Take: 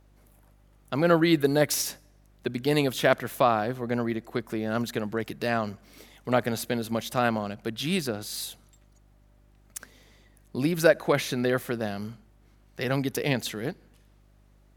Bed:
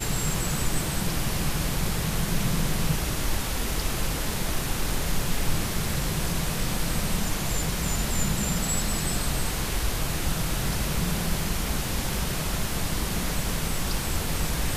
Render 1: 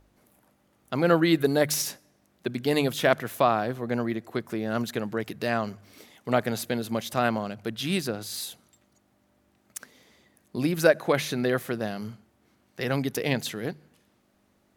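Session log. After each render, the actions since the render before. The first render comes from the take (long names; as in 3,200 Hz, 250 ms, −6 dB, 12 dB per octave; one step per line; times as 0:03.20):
hum removal 50 Hz, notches 3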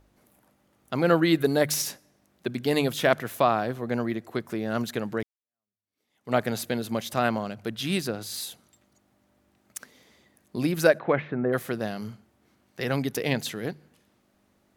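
0:05.23–0:06.35: fade in exponential
0:10.98–0:11.52: low-pass filter 3,100 Hz → 1,300 Hz 24 dB per octave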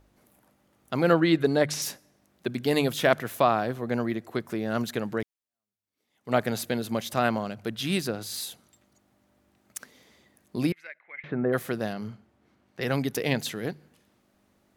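0:01.13–0:01.82: high-frequency loss of the air 63 metres
0:10.72–0:11.24: resonant band-pass 2,100 Hz, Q 13
0:11.93–0:12.82: low-pass filter 3,200 Hz 6 dB per octave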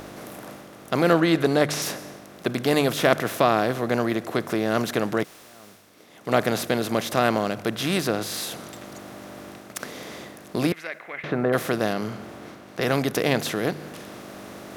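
compressor on every frequency bin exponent 0.6
reversed playback
upward compression, threshold −32 dBFS
reversed playback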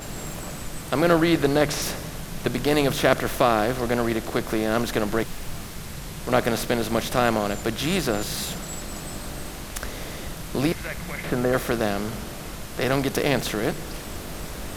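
mix in bed −8.5 dB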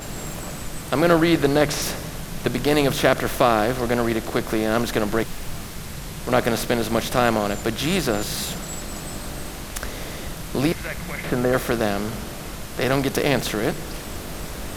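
level +2 dB
brickwall limiter −2 dBFS, peak gain reduction 2.5 dB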